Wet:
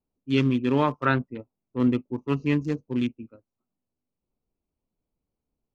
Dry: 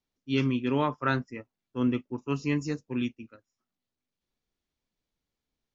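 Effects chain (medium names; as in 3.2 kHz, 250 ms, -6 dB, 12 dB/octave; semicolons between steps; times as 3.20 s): local Wiener filter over 25 samples; 1.05–1.80 s: steep low-pass 3.9 kHz 36 dB/octave; trim +4.5 dB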